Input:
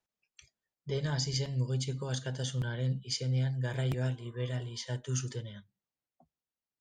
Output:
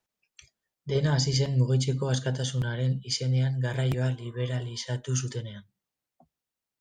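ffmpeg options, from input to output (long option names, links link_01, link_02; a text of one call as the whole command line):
ffmpeg -i in.wav -filter_complex "[0:a]asettb=1/sr,asplit=3[link_01][link_02][link_03];[link_01]atrim=end=0.954[link_04];[link_02]atrim=start=0.95:end=2.38,asetpts=PTS-STARTPTS,afade=type=in:duration=0.004:curve=qsin,afade=type=out:start_time=1.426:duration=0.004:curve=qsin,equalizer=frequency=310:width=0.35:gain=4.5[link_05];[link_03]atrim=start=2.376[link_06];[link_04][link_05]acrossfade=duration=0.004:curve1=hsin:curve2=qsin[link_07];[link_07][link_06]acrossfade=duration=0.004:curve1=qsin:curve2=hsin,volume=5dB" out.wav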